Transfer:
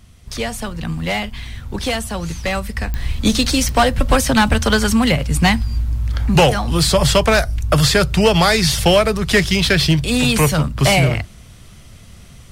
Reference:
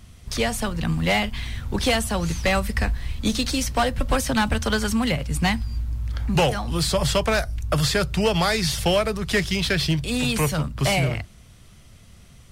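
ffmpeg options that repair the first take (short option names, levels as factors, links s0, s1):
-af "adeclick=t=4,asetnsamples=n=441:p=0,asendcmd='2.94 volume volume -7.5dB',volume=1"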